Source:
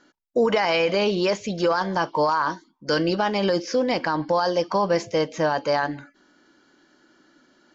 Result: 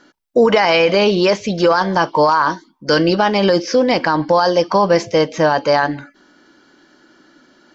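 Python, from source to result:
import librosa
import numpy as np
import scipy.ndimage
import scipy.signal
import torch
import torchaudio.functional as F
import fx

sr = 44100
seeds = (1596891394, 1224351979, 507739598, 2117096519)

y = fx.notch(x, sr, hz=6800.0, q=13.0)
y = y * librosa.db_to_amplitude(8.0)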